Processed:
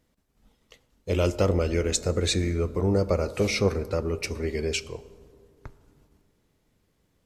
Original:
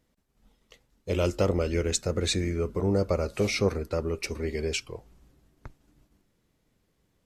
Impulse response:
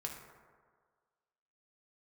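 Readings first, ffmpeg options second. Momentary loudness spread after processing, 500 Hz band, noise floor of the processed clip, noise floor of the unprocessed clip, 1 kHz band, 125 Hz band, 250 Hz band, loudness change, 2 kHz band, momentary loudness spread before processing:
7 LU, +2.0 dB, −71 dBFS, −73 dBFS, +2.0 dB, +3.0 dB, +1.5 dB, +2.0 dB, +1.5 dB, 7 LU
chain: -filter_complex "[0:a]asplit=2[link_01][link_02];[1:a]atrim=start_sample=2205,asetrate=28224,aresample=44100[link_03];[link_02][link_03]afir=irnorm=-1:irlink=0,volume=-12dB[link_04];[link_01][link_04]amix=inputs=2:normalize=0"

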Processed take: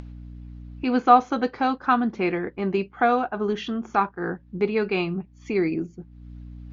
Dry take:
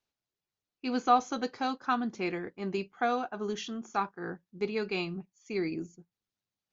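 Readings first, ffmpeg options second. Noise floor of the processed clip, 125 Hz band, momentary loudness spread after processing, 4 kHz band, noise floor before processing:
−52 dBFS, +10.0 dB, 24 LU, +3.0 dB, below −85 dBFS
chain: -af "aeval=exprs='val(0)+0.000562*(sin(2*PI*60*n/s)+sin(2*PI*2*60*n/s)/2+sin(2*PI*3*60*n/s)/3+sin(2*PI*4*60*n/s)/4+sin(2*PI*5*60*n/s)/5)':channel_layout=same,lowpass=2700,acompressor=mode=upward:threshold=-33dB:ratio=2.5,volume=9dB"

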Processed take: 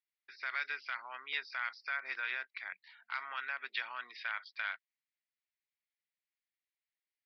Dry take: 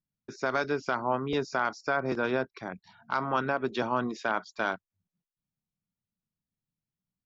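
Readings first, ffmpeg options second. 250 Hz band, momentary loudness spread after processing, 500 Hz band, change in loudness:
below −35 dB, 7 LU, −28.5 dB, −9.0 dB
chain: -af "alimiter=limit=-19.5dB:level=0:latency=1:release=60,highpass=frequency=2000:width_type=q:width=3.9,aresample=11025,aresample=44100,volume=-3.5dB"

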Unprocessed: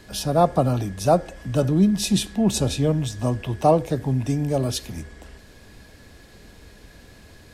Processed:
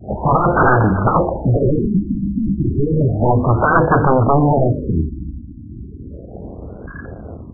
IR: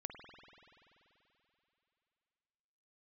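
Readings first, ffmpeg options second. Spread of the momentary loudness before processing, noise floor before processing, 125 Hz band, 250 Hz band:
8 LU, −49 dBFS, +7.5 dB, +5.0 dB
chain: -af "highpass=52,bandreject=frequency=50:width_type=h:width=6,bandreject=frequency=100:width_type=h:width=6,bandreject=frequency=150:width_type=h:width=6,bandreject=frequency=200:width_type=h:width=6,bandreject=frequency=250:width_type=h:width=6,bandreject=frequency=300:width_type=h:width=6,bandreject=frequency=350:width_type=h:width=6,bandreject=frequency=400:width_type=h:width=6,bandreject=frequency=450:width_type=h:width=6,adynamicequalizer=threshold=0.0158:dfrequency=430:dqfactor=2.4:tfrequency=430:tqfactor=2.4:attack=5:release=100:ratio=0.375:range=1.5:mode=cutabove:tftype=bell,aeval=exprs='0.501*sin(PI/2*8.91*val(0)/0.501)':channel_layout=same,lowpass=frequency=2900:width=0.5412,lowpass=frequency=2900:width=1.3066,tiltshelf=frequency=970:gain=-5.5,aecho=1:1:285:0.2,afwtdn=0.0631,afftfilt=real='re*lt(b*sr/1024,310*pow(1700/310,0.5+0.5*sin(2*PI*0.32*pts/sr)))':imag='im*lt(b*sr/1024,310*pow(1700/310,0.5+0.5*sin(2*PI*0.32*pts/sr)))':win_size=1024:overlap=0.75,volume=1dB"

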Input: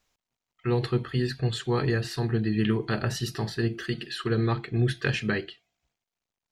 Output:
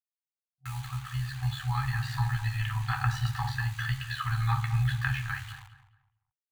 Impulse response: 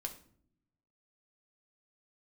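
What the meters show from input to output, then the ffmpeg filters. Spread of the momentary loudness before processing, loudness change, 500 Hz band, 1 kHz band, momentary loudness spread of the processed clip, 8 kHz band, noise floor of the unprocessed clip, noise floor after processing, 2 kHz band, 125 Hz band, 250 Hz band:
6 LU, −3.0 dB, below −40 dB, +2.0 dB, 9 LU, −4.0 dB, below −85 dBFS, below −85 dBFS, −0.5 dB, −0.5 dB, below −15 dB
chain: -filter_complex "[0:a]acrossover=split=170|1700[link_01][link_02][link_03];[link_01]acompressor=threshold=-36dB:ratio=4[link_04];[link_02]acompressor=threshold=-30dB:ratio=4[link_05];[link_03]acompressor=threshold=-49dB:ratio=4[link_06];[link_04][link_05][link_06]amix=inputs=3:normalize=0,bandreject=frequency=50:width_type=h:width=6,bandreject=frequency=100:width_type=h:width=6,bandreject=frequency=150:width_type=h:width=6,bandreject=frequency=200:width_type=h:width=6,bandreject=frequency=250:width_type=h:width=6,bandreject=frequency=300:width_type=h:width=6,bandreject=frequency=350:width_type=h:width=6,bandreject=frequency=400:width_type=h:width=6,bandreject=frequency=450:width_type=h:width=6,dynaudnorm=framelen=220:gausssize=13:maxgain=11.5dB[link_07];[1:a]atrim=start_sample=2205,asetrate=48510,aresample=44100[link_08];[link_07][link_08]afir=irnorm=-1:irlink=0,acrusher=bits=6:mix=0:aa=0.000001,tremolo=f=72:d=0.462,equalizer=frequency=5300:width=5.7:gain=-7.5,asplit=2[link_09][link_10];[link_10]adelay=212,lowpass=frequency=1900:poles=1,volume=-11.5dB,asplit=2[link_11][link_12];[link_12]adelay=212,lowpass=frequency=1900:poles=1,volume=0.31,asplit=2[link_13][link_14];[link_14]adelay=212,lowpass=frequency=1900:poles=1,volume=0.31[link_15];[link_09][link_11][link_13][link_15]amix=inputs=4:normalize=0,afftfilt=real='re*(1-between(b*sr/4096,130,750))':imag='im*(1-between(b*sr/4096,130,750))':win_size=4096:overlap=0.75,adynamicequalizer=threshold=0.00158:dfrequency=7200:dqfactor=0.7:tfrequency=7200:tqfactor=0.7:attack=5:release=100:ratio=0.375:range=3:mode=cutabove:tftype=highshelf"

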